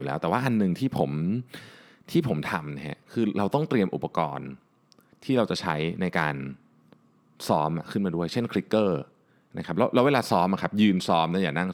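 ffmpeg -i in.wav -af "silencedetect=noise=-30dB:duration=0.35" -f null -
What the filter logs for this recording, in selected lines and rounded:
silence_start: 1.57
silence_end: 2.09 | silence_duration: 0.52
silence_start: 4.46
silence_end: 5.29 | silence_duration: 0.83
silence_start: 6.50
silence_end: 7.40 | silence_duration: 0.90
silence_start: 9.02
silence_end: 9.57 | silence_duration: 0.56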